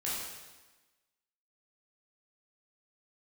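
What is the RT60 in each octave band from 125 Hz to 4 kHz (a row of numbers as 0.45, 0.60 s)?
1.1, 1.3, 1.2, 1.2, 1.2, 1.1 s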